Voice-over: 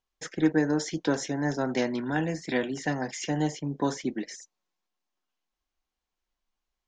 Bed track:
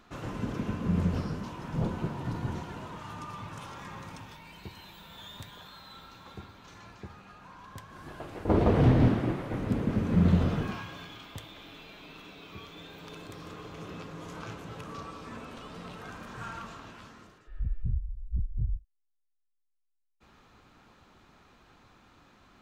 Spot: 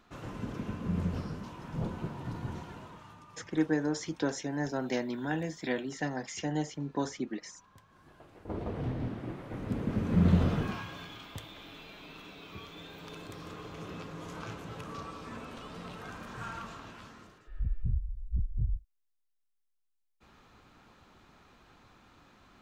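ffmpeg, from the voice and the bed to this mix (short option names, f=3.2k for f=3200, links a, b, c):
-filter_complex "[0:a]adelay=3150,volume=-5dB[a];[1:a]volume=8.5dB,afade=t=out:st=2.69:d=0.54:silence=0.354813,afade=t=in:st=9.08:d=1.32:silence=0.223872[b];[a][b]amix=inputs=2:normalize=0"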